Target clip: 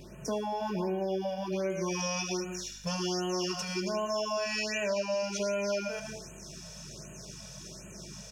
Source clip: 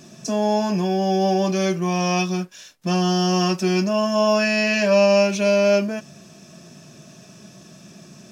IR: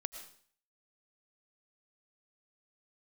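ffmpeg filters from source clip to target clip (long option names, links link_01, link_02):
-filter_complex "[0:a]aecho=1:1:2.1:0.58[link_01];[1:a]atrim=start_sample=2205,asetrate=48510,aresample=44100[link_02];[link_01][link_02]afir=irnorm=-1:irlink=0,aeval=exprs='val(0)+0.00224*(sin(2*PI*50*n/s)+sin(2*PI*2*50*n/s)/2+sin(2*PI*3*50*n/s)/3+sin(2*PI*4*50*n/s)/4+sin(2*PI*5*50*n/s)/5)':channel_layout=same,asetnsamples=nb_out_samples=441:pad=0,asendcmd='1.7 equalizer g 4.5',equalizer=frequency=6700:width=1.1:gain=-11,aecho=1:1:75:0.211,acompressor=threshold=-29dB:ratio=6,afftfilt=real='re*(1-between(b*sr/1024,280*pow(4600/280,0.5+0.5*sin(2*PI*1.3*pts/sr))/1.41,280*pow(4600/280,0.5+0.5*sin(2*PI*1.3*pts/sr))*1.41))':imag='im*(1-between(b*sr/1024,280*pow(4600/280,0.5+0.5*sin(2*PI*1.3*pts/sr))/1.41,280*pow(4600/280,0.5+0.5*sin(2*PI*1.3*pts/sr))*1.41))':win_size=1024:overlap=0.75"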